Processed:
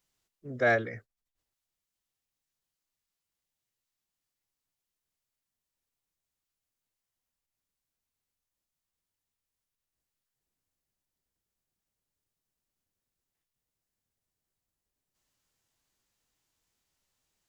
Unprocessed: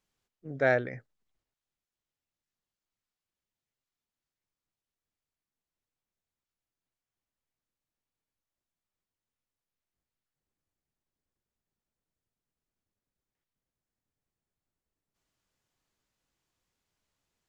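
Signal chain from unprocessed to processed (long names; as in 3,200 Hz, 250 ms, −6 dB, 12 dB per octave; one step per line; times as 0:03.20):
high-shelf EQ 3,800 Hz +7.5 dB
phase-vocoder pitch shift with formants kept −1.5 semitones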